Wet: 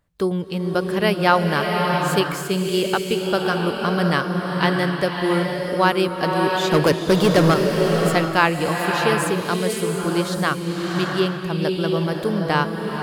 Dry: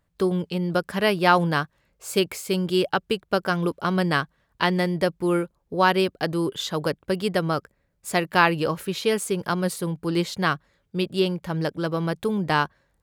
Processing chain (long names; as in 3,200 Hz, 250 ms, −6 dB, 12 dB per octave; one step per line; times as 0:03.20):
0:06.71–0:07.54: leveller curve on the samples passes 3
slow-attack reverb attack 700 ms, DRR 1.5 dB
level +1 dB